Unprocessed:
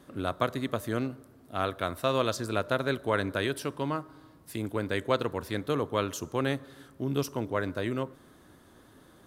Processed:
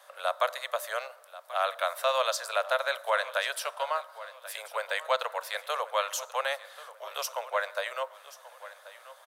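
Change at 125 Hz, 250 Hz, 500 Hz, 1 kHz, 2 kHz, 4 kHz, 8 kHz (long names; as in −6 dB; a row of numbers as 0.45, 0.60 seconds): below −40 dB, below −40 dB, −1.0 dB, +3.5 dB, +3.5 dB, +3.5 dB, +5.0 dB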